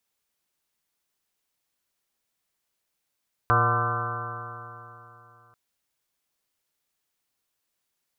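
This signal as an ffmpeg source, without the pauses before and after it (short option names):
-f lavfi -i "aevalsrc='0.0708*pow(10,-3*t/3.11)*sin(2*PI*115.22*t)+0.0133*pow(10,-3*t/3.11)*sin(2*PI*231.74*t)+0.0188*pow(10,-3*t/3.11)*sin(2*PI*350.85*t)+0.0316*pow(10,-3*t/3.11)*sin(2*PI*473.78*t)+0.02*pow(10,-3*t/3.11)*sin(2*PI*601.69*t)+0.0398*pow(10,-3*t/3.11)*sin(2*PI*735.68*t)+0.0141*pow(10,-3*t/3.11)*sin(2*PI*876.75*t)+0.0631*pow(10,-3*t/3.11)*sin(2*PI*1025.79*t)+0.0891*pow(10,-3*t/3.11)*sin(2*PI*1183.62*t)+0.0562*pow(10,-3*t/3.11)*sin(2*PI*1350.94*t)+0.0473*pow(10,-3*t/3.11)*sin(2*PI*1528.4*t)':d=2.04:s=44100"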